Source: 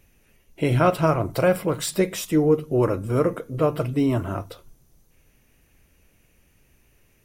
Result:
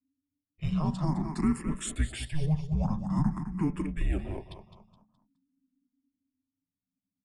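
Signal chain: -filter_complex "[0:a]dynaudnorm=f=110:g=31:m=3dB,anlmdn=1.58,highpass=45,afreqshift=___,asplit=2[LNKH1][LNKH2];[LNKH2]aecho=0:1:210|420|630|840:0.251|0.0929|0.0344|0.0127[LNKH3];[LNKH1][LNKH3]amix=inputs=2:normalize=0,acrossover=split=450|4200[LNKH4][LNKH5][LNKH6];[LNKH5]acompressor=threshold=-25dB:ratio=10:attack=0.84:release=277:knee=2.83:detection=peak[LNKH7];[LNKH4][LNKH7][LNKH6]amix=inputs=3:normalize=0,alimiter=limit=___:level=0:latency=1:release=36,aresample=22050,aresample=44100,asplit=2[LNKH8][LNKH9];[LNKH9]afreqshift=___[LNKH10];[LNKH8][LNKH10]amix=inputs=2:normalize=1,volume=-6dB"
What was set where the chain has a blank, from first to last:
-310, -9.5dB, 0.48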